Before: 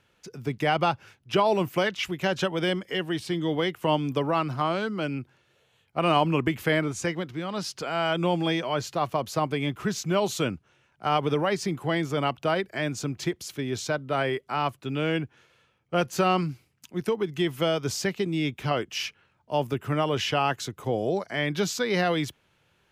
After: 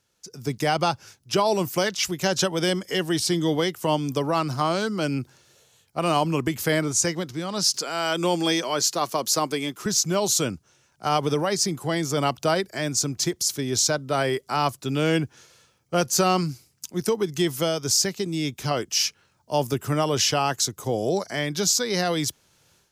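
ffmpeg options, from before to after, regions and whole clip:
-filter_complex "[0:a]asettb=1/sr,asplit=3[a][b][c];[a]atrim=end=7.744[d];[b]atrim=start=7.74:end=9.86,asetpts=PTS-STARTPTS,afade=t=in:d=0.004:c=qsin,afade=t=out:st=2.116:d=0.004:c=qsin,highpass=250,equalizer=f=690:w=1.6:g=-4,acompressor=mode=upward:threshold=-42dB:ratio=2.5:attack=3.2:release=140:knee=2.83:detection=peak[e];[c]atrim=start=9.856[f];[d][e]acrossfade=d=0.004:c1=hsin:c2=qsin[g];[g][f]acrossfade=d=0.004:c1=qsin:c2=hsin,highshelf=f=3.9k:t=q:w=1.5:g=11,dynaudnorm=f=250:g=3:m=15.5dB,volume=-8dB"

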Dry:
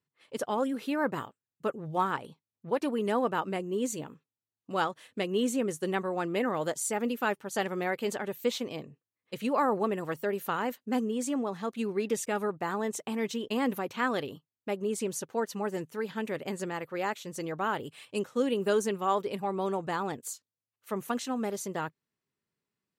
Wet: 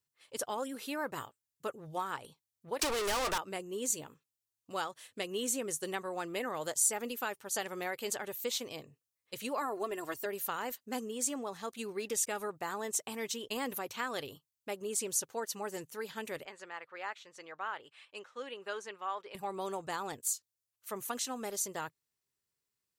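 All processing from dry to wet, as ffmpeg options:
-filter_complex "[0:a]asettb=1/sr,asplit=3[a][b][c];[a]atrim=end=2.794[d];[b]atrim=start=2.79:end=3.38,asetpts=PTS-STARTPTS,afade=t=in:d=0.004:c=qsin,afade=t=out:st=0.586:d=0.004:c=qsin,lowshelf=f=230:g=-11.5,asplit=2[e][f];[f]highpass=f=720:p=1,volume=38dB,asoftclip=type=tanh:threshold=-17.5dB[g];[e][g]amix=inputs=2:normalize=0,lowpass=f=4.3k:p=1,volume=-6dB[h];[c]atrim=start=3.376[i];[d][h]acrossfade=d=0.004:c1=hsin:c2=qsin[j];[j][i]acrossfade=d=0.004:c1=qsin:c2=hsin,asettb=1/sr,asplit=3[k][l][m];[k]atrim=end=9.614[n];[l]atrim=start=9.61:end=10.26,asetpts=PTS-STARTPTS,afade=t=in:d=0.004:c=qsin,afade=t=out:st=0.646:d=0.004:c=qsin,bandreject=f=2.3k:w=19,aecho=1:1:2.9:0.66,atrim=end_sample=28665[o];[m]atrim=start=10.256[p];[n][o]acrossfade=d=0.004:c1=hsin:c2=qsin[q];[q][p]acrossfade=d=0.004:c1=qsin:c2=hsin,asettb=1/sr,asplit=3[r][s][t];[r]atrim=end=16.454[u];[s]atrim=start=16.45:end=19.35,asetpts=PTS-STARTPTS,afade=t=in:d=0.004:c=qsin,afade=t=out:st=2.896:d=0.004:c=qsin,bandpass=f=1.7k:t=q:w=0.74,aemphasis=mode=reproduction:type=50kf[v];[t]atrim=start=19.346[w];[u][v]acrossfade=d=0.004:c1=hsin:c2=qsin[x];[x][w]acrossfade=d=0.004:c1=qsin:c2=hsin,equalizer=f=190:w=0.89:g=-13,acompressor=threshold=-28dB:ratio=6,bass=f=250:g=6,treble=f=4k:g=10,volume=-3.5dB"

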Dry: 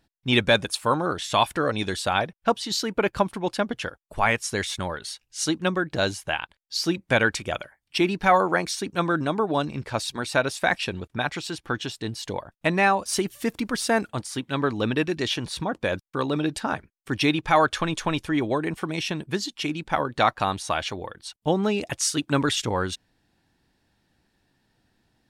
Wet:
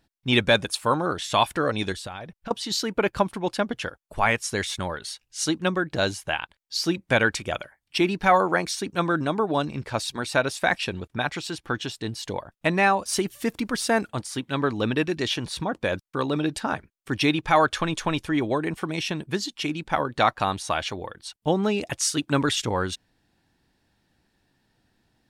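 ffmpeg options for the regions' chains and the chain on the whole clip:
-filter_complex "[0:a]asettb=1/sr,asplit=3[a][b][c];[a]atrim=end=1.924[d];[b]atrim=start=1.92:end=2.51,asetpts=PTS-STARTPTS,afade=t=in:d=0.004:c=qsin,afade=t=out:st=0.586:d=0.004:c=qsin,acompressor=threshold=-34dB:ratio=5:attack=3.2:release=140:knee=1:detection=peak,lowshelf=f=110:g=8.5[e];[c]atrim=start=2.506[f];[d][e]acrossfade=d=0.004:c1=hsin:c2=qsin[g];[g][f]acrossfade=d=0.004:c1=qsin:c2=hsin"

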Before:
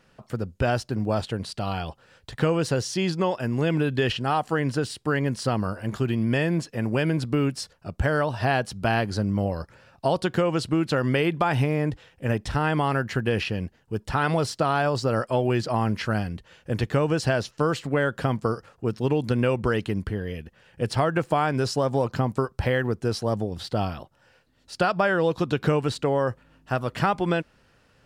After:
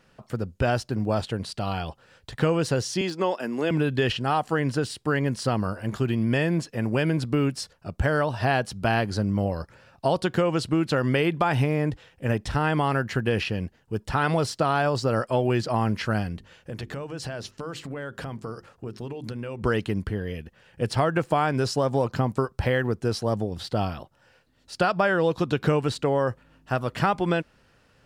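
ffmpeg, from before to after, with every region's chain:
-filter_complex "[0:a]asettb=1/sr,asplit=3[a][b][c];[a]atrim=end=3.014[d];[b]atrim=start=3.01:end=3.71,asetpts=PTS-STARTPTS,afade=t=in:d=0.004:c=qsin,afade=t=out:st=0.696:d=0.004:c=qsin,highpass=f=220:w=0.5412,highpass=f=220:w=1.3066,deesser=0.8[e];[c]atrim=start=3.706[f];[d][e]acrossfade=d=0.004:c1=hsin:c2=qsin[g];[g][f]acrossfade=d=0.004:c1=qsin:c2=hsin,asettb=1/sr,asplit=3[h][i][j];[h]atrim=end=16.354[k];[i]atrim=start=16.35:end=19.62,asetpts=PTS-STARTPTS,afade=t=in:d=0.004:c=qsin,afade=t=out:st=3.266:d=0.004:c=qsin,acompressor=threshold=-30dB:ratio=6:attack=3.2:release=140:knee=1:detection=peak,bandreject=f=50:t=h:w=6,bandreject=f=100:t=h:w=6,bandreject=f=150:t=h:w=6,bandreject=f=200:t=h:w=6,bandreject=f=250:t=h:w=6,bandreject=f=300:t=h:w=6,bandreject=f=350:t=h:w=6,bandreject=f=400:t=h:w=6[l];[j]atrim=start=19.616[m];[k][l]acrossfade=d=0.004:c1=hsin:c2=qsin[n];[n][m]acrossfade=d=0.004:c1=qsin:c2=hsin"

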